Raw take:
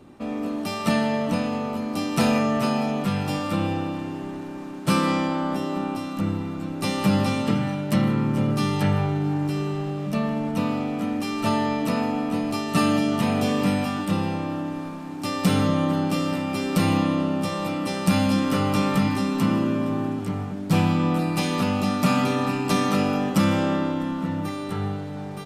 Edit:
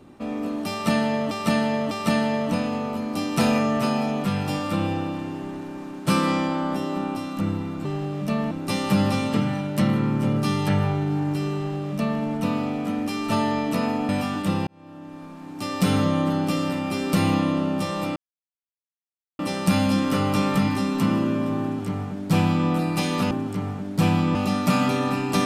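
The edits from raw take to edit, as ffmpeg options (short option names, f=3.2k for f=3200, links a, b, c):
-filter_complex "[0:a]asplit=10[a][b][c][d][e][f][g][h][i][j];[a]atrim=end=1.312[k];[b]atrim=start=0.708:end=1.312[l];[c]atrim=start=0.708:end=6.652[m];[d]atrim=start=9.698:end=10.362[n];[e]atrim=start=6.648:end=12.232[o];[f]atrim=start=13.718:end=14.3,asetpts=PTS-STARTPTS,afade=t=out:st=0.578:d=0.004:c=hsin[p];[g]atrim=start=14.3:end=17.79,asetpts=PTS-STARTPTS,afade=t=in:d=1.25,afade=t=out:st=3.486:d=0.004:c=hsin,apad=pad_dur=1.23[q];[h]atrim=start=17.79:end=21.712,asetpts=PTS-STARTPTS,afade=t=in:d=0.004:c=hsin[r];[i]atrim=start=20.028:end=21.072[s];[j]atrim=start=21.708[t];[k][l]acrossfade=d=0.004:c1=hsin:c2=hsin[u];[u][m]acrossfade=d=0.004:c1=hsin:c2=hsin[v];[v][n]acrossfade=d=0.004:c1=hsin:c2=hsin[w];[w][o]acrossfade=d=0.004:c1=hsin:c2=hsin[x];[p][q][r]concat=n=3:v=0:a=1[y];[x][y]acrossfade=d=0.004:c1=hsin:c2=hsin[z];[z][s]acrossfade=d=0.004:c1=hsin:c2=hsin[aa];[aa][t]acrossfade=d=0.004:c1=hsin:c2=hsin"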